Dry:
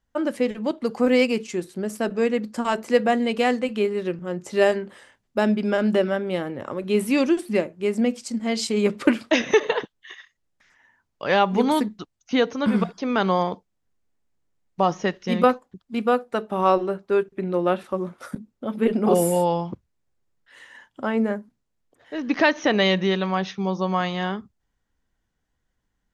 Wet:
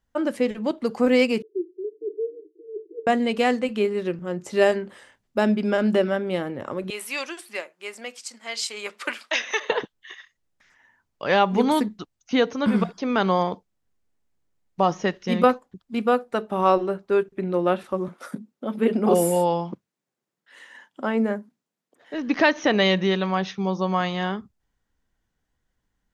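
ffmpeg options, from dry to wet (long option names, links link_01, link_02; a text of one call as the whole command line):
ffmpeg -i in.wav -filter_complex "[0:a]asettb=1/sr,asplit=3[link_01][link_02][link_03];[link_01]atrim=end=1.424[link_04];[link_02]atrim=start=1.42:end=3.07,asetpts=PTS-STARTPTS,afade=type=in:duration=0.004:curve=qsin,afade=type=out:start_time=1.646:duration=0.004:curve=qsin,asuperpass=centerf=370:order=20:qfactor=2.4[link_05];[link_03]atrim=start=3.066[link_06];[link_04][link_05]acrossfade=duration=0.004:curve1=hsin:curve2=qsin[link_07];[link_07][link_06]acrossfade=duration=0.004:curve1=qsin:curve2=hsin,asettb=1/sr,asplit=3[link_08][link_09][link_10];[link_08]atrim=end=6.904[link_11];[link_09]atrim=start=6.9:end=9.7,asetpts=PTS-STARTPTS,afade=type=in:duration=0.004:curve=qsin,afade=type=out:start_time=2.796:duration=0.004:curve=qsin,highpass=1000[link_12];[link_10]atrim=start=9.696[link_13];[link_11][link_12]acrossfade=duration=0.004:curve1=hsin:curve2=qsin[link_14];[link_14][link_13]acrossfade=duration=0.004:curve1=qsin:curve2=hsin,asettb=1/sr,asplit=3[link_15][link_16][link_17];[link_15]atrim=end=18.084[link_18];[link_16]atrim=start=18.08:end=22.14,asetpts=PTS-STARTPTS,afade=type=in:duration=0.004:curve=qsin,afade=type=out:start_time=4.056:duration=0.004:curve=qsin,highpass=frequency=160:width=0.5412,highpass=frequency=160:width=1.3066[link_19];[link_17]atrim=start=22.136[link_20];[link_18][link_19]acrossfade=duration=0.004:curve1=hsin:curve2=qsin[link_21];[link_21][link_20]acrossfade=duration=0.004:curve1=qsin:curve2=hsin" out.wav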